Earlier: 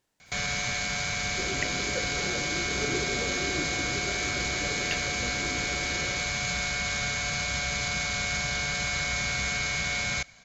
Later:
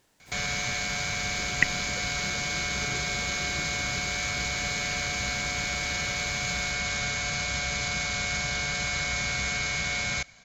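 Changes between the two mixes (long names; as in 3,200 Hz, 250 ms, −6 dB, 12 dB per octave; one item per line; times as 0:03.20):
speech +10.5 dB
second sound −11.5 dB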